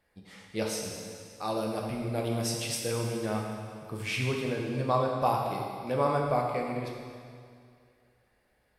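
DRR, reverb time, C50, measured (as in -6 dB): -0.5 dB, 2.2 s, 2.0 dB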